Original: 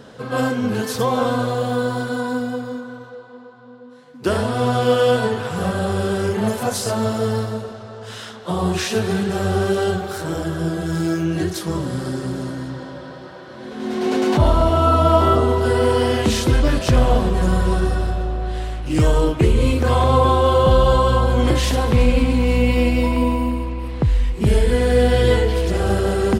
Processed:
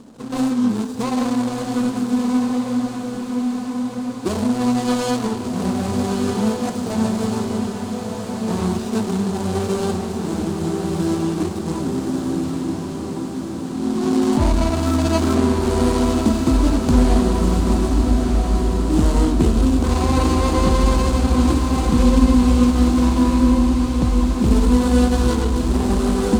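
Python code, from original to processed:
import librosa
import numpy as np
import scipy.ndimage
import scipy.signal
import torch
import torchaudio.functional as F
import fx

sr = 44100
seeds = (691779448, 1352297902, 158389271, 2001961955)

p1 = scipy.ndimage.median_filter(x, 41, mode='constant')
p2 = fx.graphic_eq(p1, sr, hz=(125, 250, 500, 1000, 2000, 4000, 8000), db=(-10, 9, -9, 7, -7, 4, 11))
y = p2 + fx.echo_diffused(p2, sr, ms=1338, feedback_pct=64, wet_db=-5, dry=0)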